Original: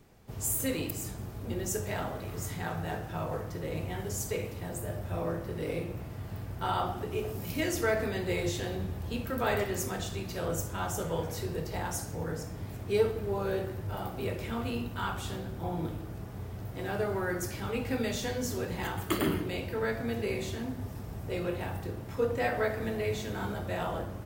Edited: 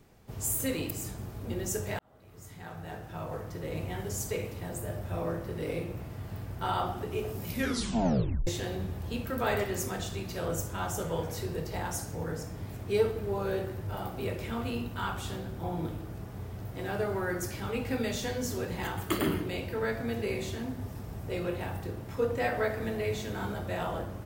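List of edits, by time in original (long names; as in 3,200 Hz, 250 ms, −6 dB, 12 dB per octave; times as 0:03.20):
0:01.99–0:03.85: fade in
0:07.47: tape stop 1.00 s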